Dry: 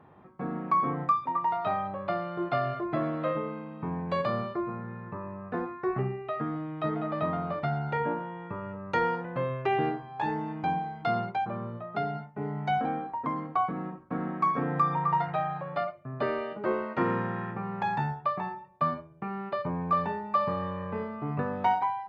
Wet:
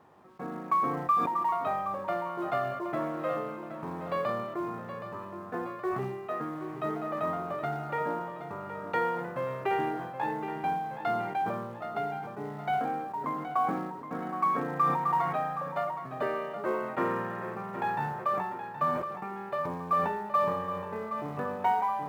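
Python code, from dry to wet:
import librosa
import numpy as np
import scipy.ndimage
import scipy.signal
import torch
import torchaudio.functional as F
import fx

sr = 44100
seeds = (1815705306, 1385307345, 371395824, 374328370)

p1 = fx.quant_companded(x, sr, bits=6)
p2 = fx.bass_treble(p1, sr, bass_db=-8, treble_db=-11)
p3 = p2 + fx.echo_feedback(p2, sr, ms=771, feedback_pct=42, wet_db=-10.5, dry=0)
p4 = fx.sustainer(p3, sr, db_per_s=44.0)
y = F.gain(torch.from_numpy(p4), -1.5).numpy()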